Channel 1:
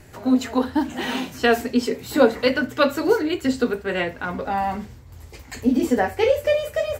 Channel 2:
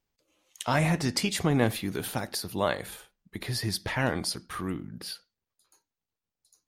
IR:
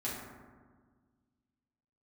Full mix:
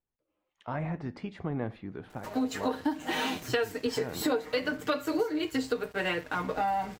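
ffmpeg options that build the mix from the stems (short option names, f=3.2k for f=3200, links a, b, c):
-filter_complex "[0:a]equalizer=f=150:t=o:w=1.2:g=-5.5,aecho=1:1:6.5:0.71,aeval=exprs='sgn(val(0))*max(abs(val(0))-0.00562,0)':c=same,adelay=2100,volume=-2dB[a];[1:a]lowpass=1.5k,volume=-8dB[b];[a][b]amix=inputs=2:normalize=0,acompressor=threshold=-26dB:ratio=6"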